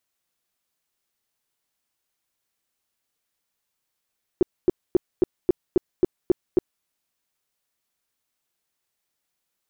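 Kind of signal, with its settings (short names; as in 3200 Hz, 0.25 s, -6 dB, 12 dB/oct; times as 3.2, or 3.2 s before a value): tone bursts 360 Hz, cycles 6, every 0.27 s, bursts 9, -12 dBFS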